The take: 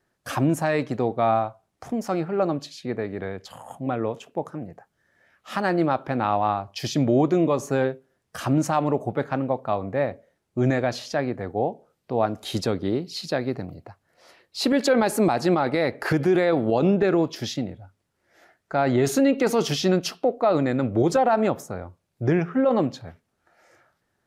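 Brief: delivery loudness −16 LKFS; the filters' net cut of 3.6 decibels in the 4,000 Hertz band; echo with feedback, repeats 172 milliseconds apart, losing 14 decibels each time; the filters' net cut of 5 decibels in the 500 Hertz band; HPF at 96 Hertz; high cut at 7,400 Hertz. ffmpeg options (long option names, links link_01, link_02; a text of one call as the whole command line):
ffmpeg -i in.wav -af "highpass=96,lowpass=7400,equalizer=frequency=500:width_type=o:gain=-6.5,equalizer=frequency=4000:width_type=o:gain=-4,aecho=1:1:172|344:0.2|0.0399,volume=10.5dB" out.wav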